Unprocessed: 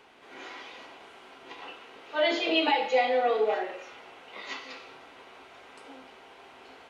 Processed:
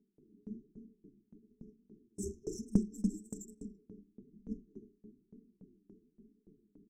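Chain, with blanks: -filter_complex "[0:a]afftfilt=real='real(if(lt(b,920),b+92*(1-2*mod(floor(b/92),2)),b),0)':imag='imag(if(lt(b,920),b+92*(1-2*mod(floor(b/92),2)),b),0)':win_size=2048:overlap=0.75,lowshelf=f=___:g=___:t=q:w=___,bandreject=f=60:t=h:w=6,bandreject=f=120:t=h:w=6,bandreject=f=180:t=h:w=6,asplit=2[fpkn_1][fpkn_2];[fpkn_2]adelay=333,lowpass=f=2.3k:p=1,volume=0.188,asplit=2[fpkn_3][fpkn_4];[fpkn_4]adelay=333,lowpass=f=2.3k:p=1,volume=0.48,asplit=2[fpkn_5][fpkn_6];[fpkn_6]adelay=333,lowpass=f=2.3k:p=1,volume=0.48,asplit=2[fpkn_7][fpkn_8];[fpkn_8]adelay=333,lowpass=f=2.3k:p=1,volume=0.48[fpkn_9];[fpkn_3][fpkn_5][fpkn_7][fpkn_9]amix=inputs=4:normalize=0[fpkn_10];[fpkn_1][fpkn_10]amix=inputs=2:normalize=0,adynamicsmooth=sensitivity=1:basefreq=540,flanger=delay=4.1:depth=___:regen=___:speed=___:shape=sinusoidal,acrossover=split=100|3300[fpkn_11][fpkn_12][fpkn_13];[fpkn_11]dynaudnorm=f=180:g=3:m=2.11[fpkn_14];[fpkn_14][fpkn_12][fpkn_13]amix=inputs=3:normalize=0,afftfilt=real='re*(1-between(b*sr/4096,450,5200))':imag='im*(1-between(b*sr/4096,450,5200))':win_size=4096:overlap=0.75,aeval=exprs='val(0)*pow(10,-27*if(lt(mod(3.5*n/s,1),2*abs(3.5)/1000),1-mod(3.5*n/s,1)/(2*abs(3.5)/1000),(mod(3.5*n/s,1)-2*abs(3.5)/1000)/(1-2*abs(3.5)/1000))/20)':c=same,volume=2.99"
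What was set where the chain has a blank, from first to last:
140, -11.5, 3, 6.1, -2, 1.1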